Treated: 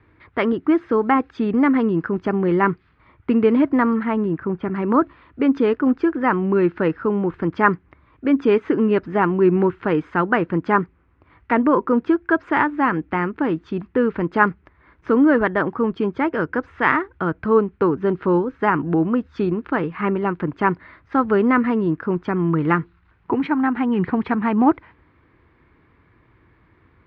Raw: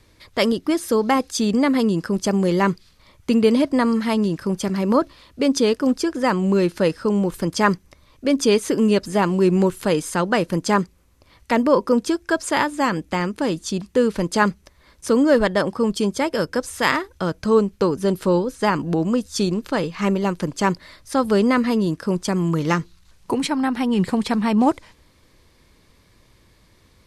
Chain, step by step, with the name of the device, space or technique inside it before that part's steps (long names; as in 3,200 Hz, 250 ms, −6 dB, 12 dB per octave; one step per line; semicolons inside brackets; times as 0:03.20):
0:04.03–0:04.75: high-frequency loss of the air 230 metres
bass cabinet (loudspeaker in its box 61–2,200 Hz, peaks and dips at 200 Hz −5 dB, 320 Hz +3 dB, 560 Hz −9 dB, 1,400 Hz +4 dB)
level +2 dB